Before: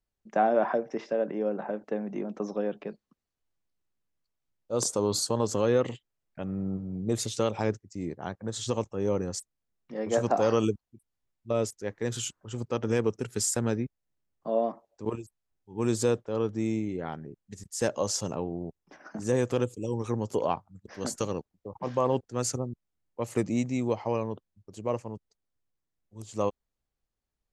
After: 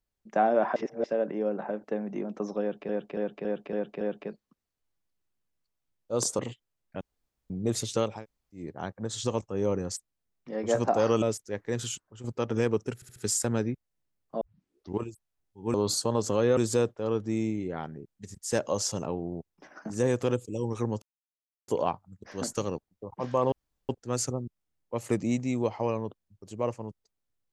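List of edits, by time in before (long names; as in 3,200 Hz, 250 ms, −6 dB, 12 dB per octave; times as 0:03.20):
0:00.76–0:01.04: reverse
0:02.61–0:02.89: repeat, 6 plays
0:04.99–0:05.82: move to 0:15.86
0:06.44–0:06.93: fill with room tone
0:07.57–0:08.05: fill with room tone, crossfade 0.24 s
0:10.65–0:11.55: remove
0:12.16–0:12.57: fade out, to −10 dB
0:13.28: stutter 0.07 s, 4 plays
0:14.53: tape start 0.58 s
0:20.31: splice in silence 0.66 s
0:22.15: splice in room tone 0.37 s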